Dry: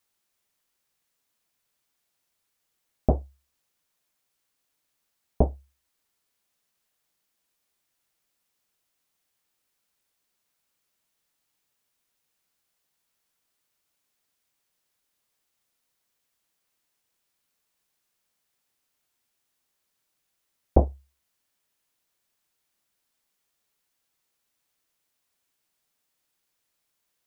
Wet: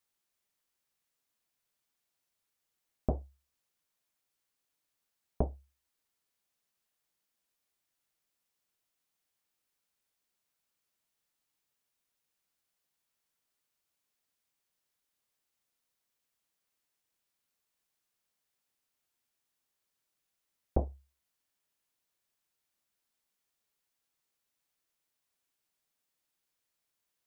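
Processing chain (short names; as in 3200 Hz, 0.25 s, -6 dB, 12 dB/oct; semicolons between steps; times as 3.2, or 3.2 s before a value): compressor 4:1, threshold -18 dBFS, peak gain reduction 6 dB; gain -6.5 dB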